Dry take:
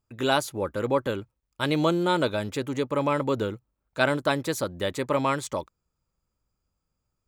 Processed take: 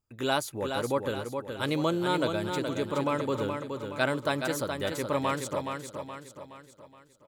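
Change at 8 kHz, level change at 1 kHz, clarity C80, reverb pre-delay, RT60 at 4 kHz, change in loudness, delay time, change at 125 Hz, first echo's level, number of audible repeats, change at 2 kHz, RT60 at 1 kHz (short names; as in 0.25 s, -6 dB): -1.5 dB, -3.0 dB, none, none, none, -3.5 dB, 0.421 s, -3.5 dB, -6.0 dB, 5, -3.0 dB, none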